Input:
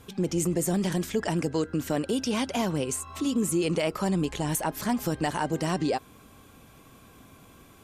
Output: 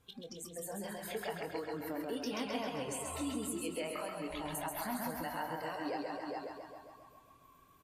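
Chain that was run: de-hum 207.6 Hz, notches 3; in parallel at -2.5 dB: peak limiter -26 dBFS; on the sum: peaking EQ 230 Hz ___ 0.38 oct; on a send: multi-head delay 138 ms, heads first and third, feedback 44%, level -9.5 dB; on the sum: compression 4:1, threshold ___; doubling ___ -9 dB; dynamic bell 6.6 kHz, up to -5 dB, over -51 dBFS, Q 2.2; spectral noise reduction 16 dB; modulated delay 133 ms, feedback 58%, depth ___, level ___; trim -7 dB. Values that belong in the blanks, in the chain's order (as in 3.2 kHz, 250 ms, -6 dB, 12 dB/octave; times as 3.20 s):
-5 dB, -29 dBFS, 24 ms, 59 cents, -4.5 dB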